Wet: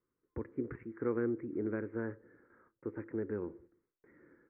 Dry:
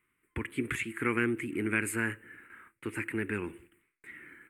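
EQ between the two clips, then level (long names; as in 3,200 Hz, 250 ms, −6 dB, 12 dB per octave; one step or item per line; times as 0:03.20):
Bessel low-pass filter 890 Hz, order 8
parametric band 520 Hz +12 dB 0.73 octaves
−6.0 dB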